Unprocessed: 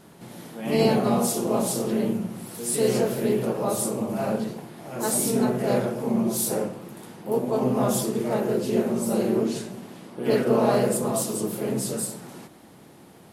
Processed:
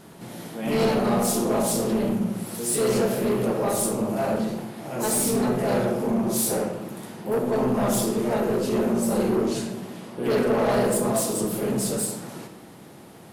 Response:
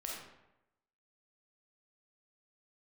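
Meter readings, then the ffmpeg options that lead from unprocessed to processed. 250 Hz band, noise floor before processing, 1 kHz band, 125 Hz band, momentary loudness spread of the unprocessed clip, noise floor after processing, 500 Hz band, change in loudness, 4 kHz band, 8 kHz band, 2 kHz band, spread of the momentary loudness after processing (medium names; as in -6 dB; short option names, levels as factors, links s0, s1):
+0.5 dB, -50 dBFS, +1.5 dB, +0.5 dB, 16 LU, -46 dBFS, +0.5 dB, +0.5 dB, +1.0 dB, +1.5 dB, +3.0 dB, 12 LU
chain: -filter_complex "[0:a]asoftclip=type=tanh:threshold=0.0841,asplit=2[s0][s1];[1:a]atrim=start_sample=2205[s2];[s1][s2]afir=irnorm=-1:irlink=0,volume=0.794[s3];[s0][s3]amix=inputs=2:normalize=0"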